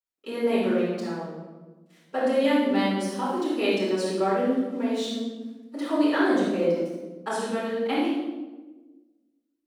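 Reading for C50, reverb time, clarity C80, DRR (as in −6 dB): −1.5 dB, 1.3 s, 2.0 dB, −11.0 dB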